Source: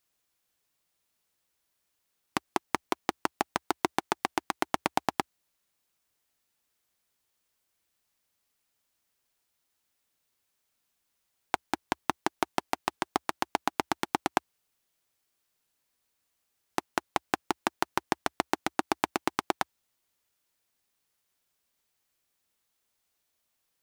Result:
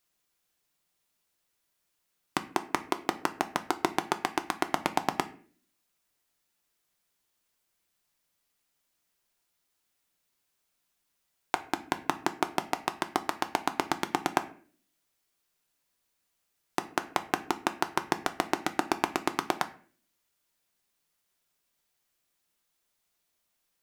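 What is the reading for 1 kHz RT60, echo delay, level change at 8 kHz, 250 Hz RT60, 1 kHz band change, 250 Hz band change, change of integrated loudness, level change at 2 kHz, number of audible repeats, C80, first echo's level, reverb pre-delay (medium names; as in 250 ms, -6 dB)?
0.40 s, no echo, +0.5 dB, 0.65 s, +0.5 dB, +1.0 dB, +0.5 dB, +0.5 dB, no echo, 19.5 dB, no echo, 3 ms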